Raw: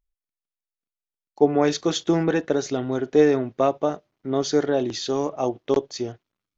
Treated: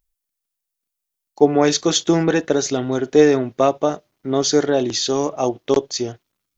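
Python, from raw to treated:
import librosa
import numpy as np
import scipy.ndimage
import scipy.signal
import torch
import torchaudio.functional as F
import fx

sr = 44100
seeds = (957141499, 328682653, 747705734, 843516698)

y = fx.high_shelf(x, sr, hz=5300.0, db=12.0)
y = y * librosa.db_to_amplitude(4.0)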